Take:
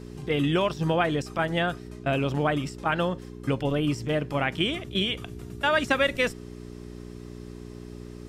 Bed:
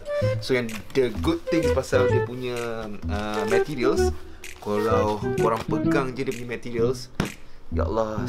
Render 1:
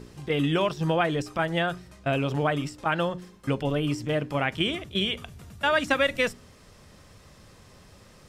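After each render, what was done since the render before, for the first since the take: de-hum 60 Hz, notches 7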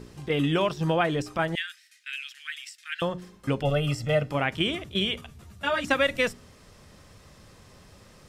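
1.55–3.02 s: steep high-pass 1.7 kHz 48 dB/octave; 3.63–4.30 s: comb 1.5 ms, depth 86%; 5.21–5.85 s: three-phase chorus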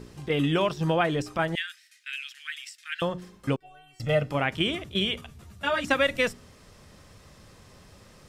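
3.56–4.00 s: inharmonic resonator 370 Hz, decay 0.75 s, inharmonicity 0.002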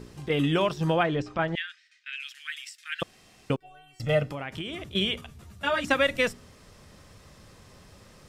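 1.03–2.20 s: distance through air 130 m; 3.03–3.50 s: room tone; 4.30–4.95 s: compression, threshold -31 dBFS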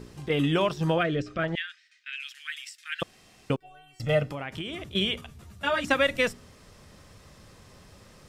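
0.98–1.44 s: Butterworth band-stop 900 Hz, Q 1.8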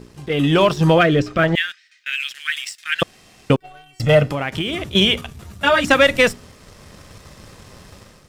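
waveshaping leveller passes 1; level rider gain up to 9.5 dB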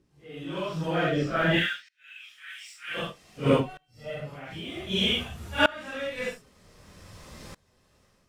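phase randomisation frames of 200 ms; sawtooth tremolo in dB swelling 0.53 Hz, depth 26 dB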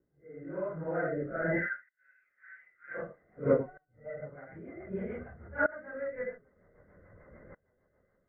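rippled Chebyshev low-pass 2.1 kHz, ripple 9 dB; rotary cabinet horn 1 Hz, later 6.7 Hz, at 2.44 s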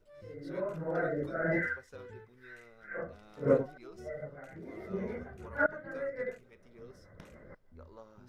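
add bed -28.5 dB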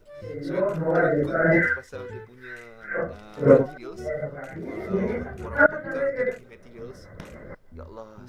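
trim +11.5 dB; peak limiter -3 dBFS, peak gain reduction 1 dB

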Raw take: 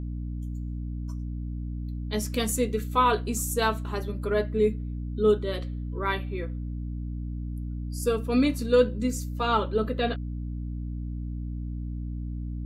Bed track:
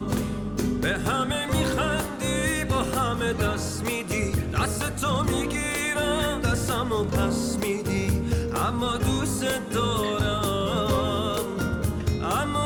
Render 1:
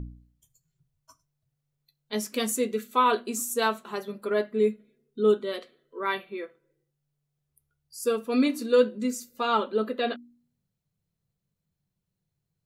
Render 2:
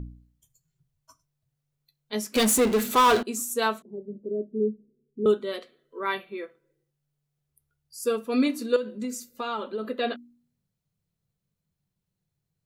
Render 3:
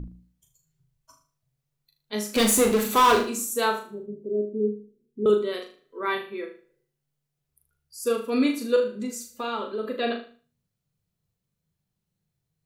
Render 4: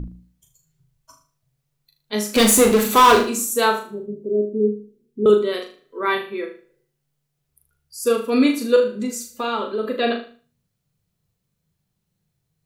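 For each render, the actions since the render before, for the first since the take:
de-hum 60 Hz, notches 5
2.35–3.23 s: power-law waveshaper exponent 0.5; 3.82–5.26 s: inverse Chebyshev low-pass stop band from 1.1 kHz, stop band 50 dB; 8.76–9.85 s: compression, threshold -27 dBFS
flutter echo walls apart 6.6 m, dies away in 0.4 s
trim +6 dB

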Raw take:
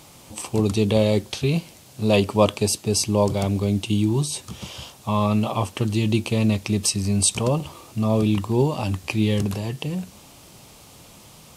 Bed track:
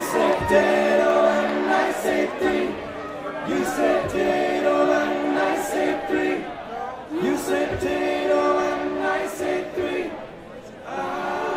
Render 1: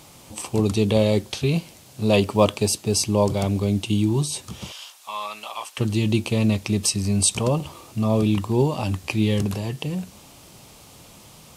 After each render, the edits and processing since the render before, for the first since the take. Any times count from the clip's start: 2.22–3.08 s: companded quantiser 8-bit; 4.72–5.78 s: high-pass 1.2 kHz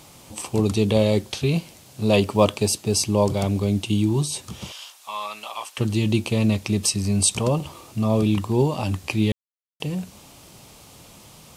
9.32–9.80 s: mute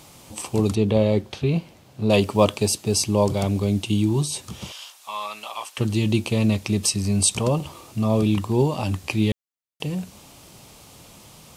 0.75–2.10 s: peaking EQ 10 kHz -13.5 dB 2.3 oct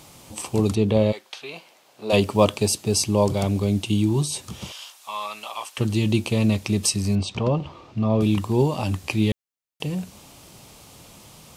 1.11–2.12 s: high-pass 1.2 kHz -> 440 Hz; 7.15–8.21 s: distance through air 210 m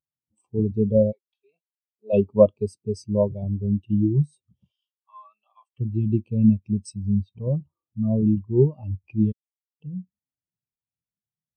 spectral contrast expander 2.5:1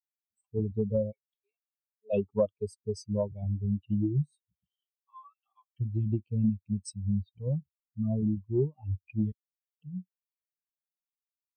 expander on every frequency bin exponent 1.5; compression 3:1, threshold -26 dBFS, peak gain reduction 12.5 dB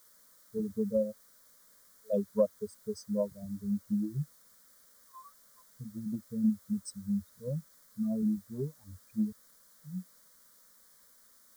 word length cut 10-bit, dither triangular; static phaser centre 530 Hz, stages 8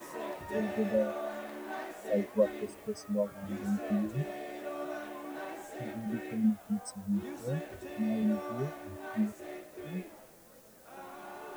add bed track -20 dB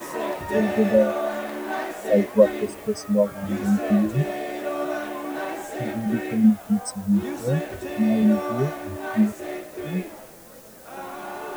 trim +11.5 dB

